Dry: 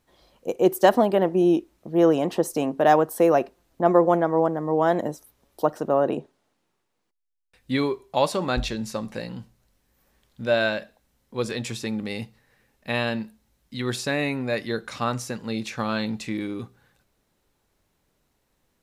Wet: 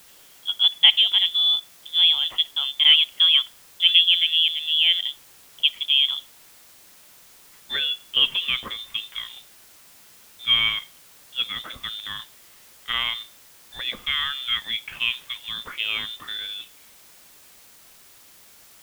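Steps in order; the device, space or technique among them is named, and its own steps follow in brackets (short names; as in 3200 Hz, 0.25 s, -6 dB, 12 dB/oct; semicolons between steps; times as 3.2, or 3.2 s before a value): scrambled radio voice (BPF 380–2600 Hz; inverted band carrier 3800 Hz; white noise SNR 26 dB); gain +2.5 dB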